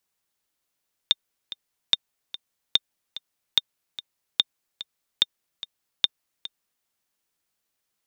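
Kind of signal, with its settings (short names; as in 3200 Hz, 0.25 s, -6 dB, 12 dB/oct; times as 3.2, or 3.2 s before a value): metronome 146 bpm, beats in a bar 2, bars 7, 3630 Hz, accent 16 dB -4 dBFS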